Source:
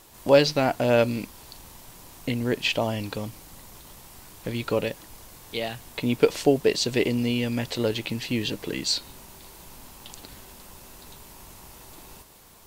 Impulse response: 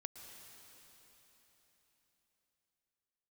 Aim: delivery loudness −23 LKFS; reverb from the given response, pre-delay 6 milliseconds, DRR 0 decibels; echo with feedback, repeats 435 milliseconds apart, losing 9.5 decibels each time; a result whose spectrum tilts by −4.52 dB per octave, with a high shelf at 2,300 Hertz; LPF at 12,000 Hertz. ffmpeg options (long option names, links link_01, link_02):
-filter_complex "[0:a]lowpass=12000,highshelf=frequency=2300:gain=-4,aecho=1:1:435|870|1305|1740:0.335|0.111|0.0365|0.012,asplit=2[link_01][link_02];[1:a]atrim=start_sample=2205,adelay=6[link_03];[link_02][link_03]afir=irnorm=-1:irlink=0,volume=4dB[link_04];[link_01][link_04]amix=inputs=2:normalize=0,volume=1.5dB"